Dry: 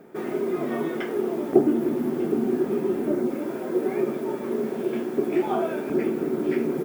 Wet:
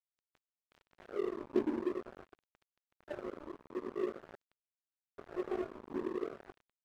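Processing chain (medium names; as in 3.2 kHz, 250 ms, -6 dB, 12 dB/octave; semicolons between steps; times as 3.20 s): rippled Chebyshev low-pass 2.2 kHz, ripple 9 dB; multi-head delay 322 ms, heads all three, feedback 61%, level -19.5 dB; LFO band-pass sine 0.47 Hz 260–1500 Hz; doubling 22 ms -9 dB; crossover distortion -36 dBFS; trim -2.5 dB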